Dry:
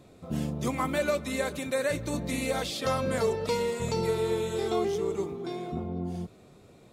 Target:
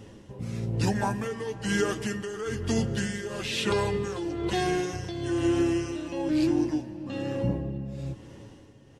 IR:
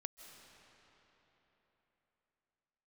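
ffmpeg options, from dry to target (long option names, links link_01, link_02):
-filter_complex "[0:a]aecho=1:1:7.2:0.41,alimiter=limit=-22.5dB:level=0:latency=1:release=230,tremolo=f=1.4:d=0.69,asetrate=33957,aresample=44100,asplit=2[link_01][link_02];[1:a]atrim=start_sample=2205[link_03];[link_02][link_03]afir=irnorm=-1:irlink=0,volume=-3.5dB[link_04];[link_01][link_04]amix=inputs=2:normalize=0,volume=4dB"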